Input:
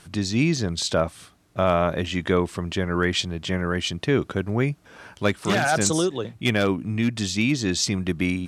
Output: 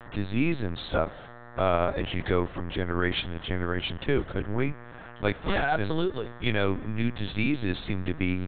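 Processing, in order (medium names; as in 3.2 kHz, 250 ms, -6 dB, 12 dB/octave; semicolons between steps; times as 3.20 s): spring tank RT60 2.3 s, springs 44 ms, chirp 35 ms, DRR 19 dB; mains buzz 120 Hz, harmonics 16, -43 dBFS -1 dB/octave; LPC vocoder at 8 kHz pitch kept; trim -4 dB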